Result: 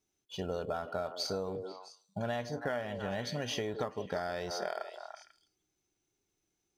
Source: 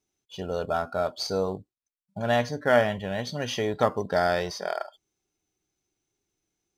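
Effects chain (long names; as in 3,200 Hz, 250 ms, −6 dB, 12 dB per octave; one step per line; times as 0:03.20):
echo through a band-pass that steps 164 ms, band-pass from 380 Hz, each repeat 1.4 octaves, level −8 dB
downward compressor 16 to 1, threshold −30 dBFS, peak gain reduction 16 dB
level −1.5 dB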